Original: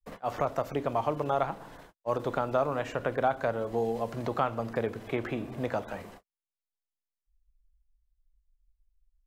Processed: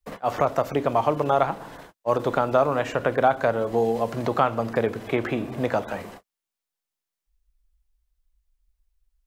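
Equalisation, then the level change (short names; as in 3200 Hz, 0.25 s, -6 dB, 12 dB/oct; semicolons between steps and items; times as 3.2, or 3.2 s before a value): low shelf 62 Hz -8.5 dB; +7.5 dB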